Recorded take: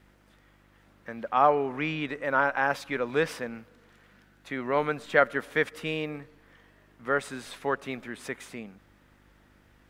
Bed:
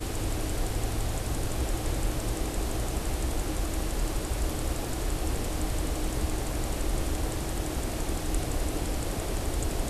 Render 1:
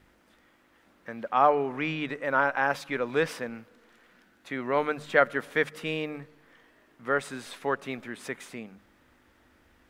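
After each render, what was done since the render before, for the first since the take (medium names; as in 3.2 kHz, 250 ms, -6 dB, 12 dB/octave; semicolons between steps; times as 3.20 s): de-hum 50 Hz, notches 4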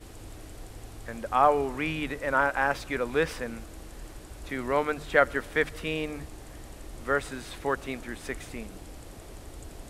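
add bed -14 dB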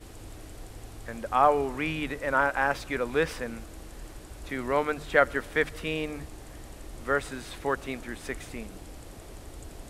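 no audible change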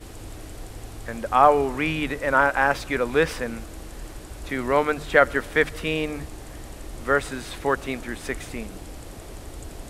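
trim +5.5 dB; peak limiter -2 dBFS, peak gain reduction 1.5 dB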